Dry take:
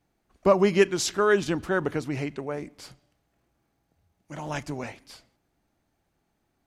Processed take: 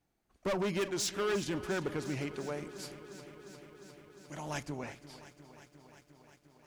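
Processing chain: high shelf 4300 Hz +3 dB, from 2.21 s +8.5 dB, from 4.63 s -2.5 dB; hard clip -23 dBFS, distortion -6 dB; lo-fi delay 0.353 s, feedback 80%, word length 10-bit, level -15 dB; gain -6.5 dB

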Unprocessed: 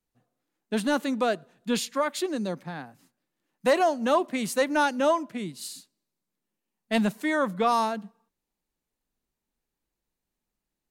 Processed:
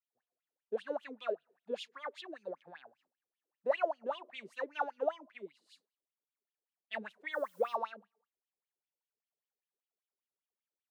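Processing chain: wah 5.1 Hz 400–3300 Hz, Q 9.6; 7.32–7.75 added noise blue -68 dBFS

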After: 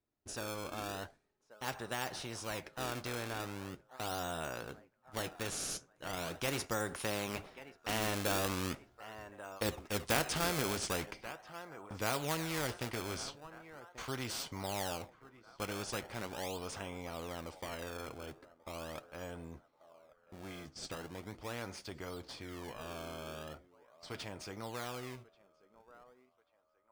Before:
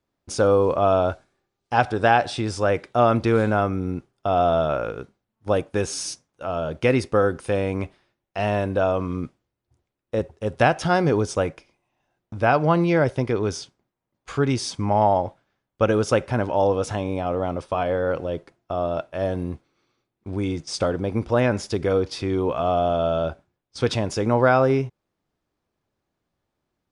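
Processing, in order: Doppler pass-by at 9.1, 21 m/s, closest 22 m; narrowing echo 1.136 s, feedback 50%, band-pass 1300 Hz, level -23.5 dB; in parallel at -8.5 dB: decimation with a swept rate 26×, swing 160% 0.4 Hz; on the sum: flange 0.11 Hz, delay 2.8 ms, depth 5.5 ms, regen -67%; spectral compressor 2:1; gain -4 dB

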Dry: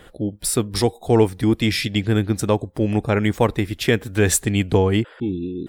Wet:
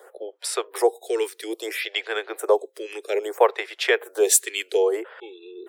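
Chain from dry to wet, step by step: steep high-pass 380 Hz 72 dB/oct; photocell phaser 0.61 Hz; gain +3 dB

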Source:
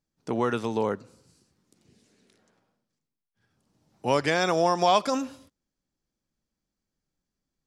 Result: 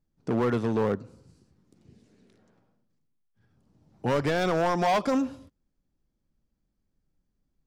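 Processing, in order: tilt -2.5 dB/oct; hard clip -20 dBFS, distortion -8 dB

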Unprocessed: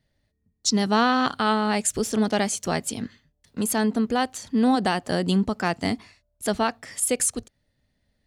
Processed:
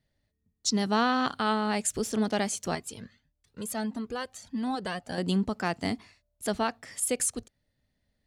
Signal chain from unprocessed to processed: 2.75–5.18 cascading flanger rising 1.6 Hz; gain -5 dB

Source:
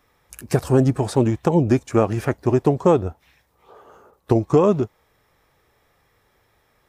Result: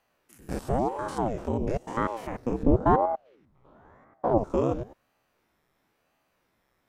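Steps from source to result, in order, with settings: stepped spectrum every 0.1 s; 2.63–4.38 RIAA curve playback; ring modulator with a swept carrier 400 Hz, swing 85%, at 0.97 Hz; gain -5.5 dB

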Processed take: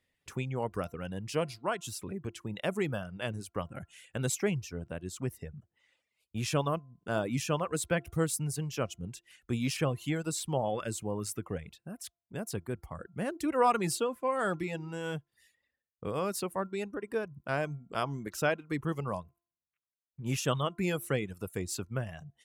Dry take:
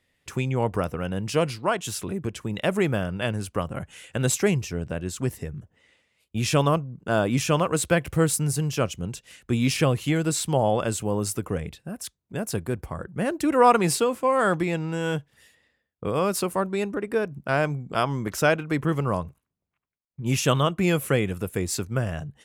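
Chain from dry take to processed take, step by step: de-hum 344.1 Hz, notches 4; reverb removal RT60 0.73 s; gain -8 dB

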